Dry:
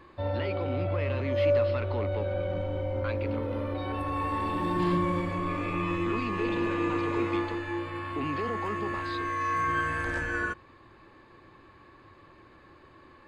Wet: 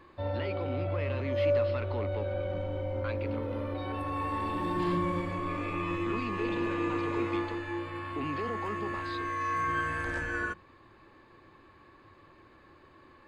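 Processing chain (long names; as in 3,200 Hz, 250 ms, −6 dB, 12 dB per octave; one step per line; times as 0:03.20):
mains-hum notches 60/120/180 Hz
level −2.5 dB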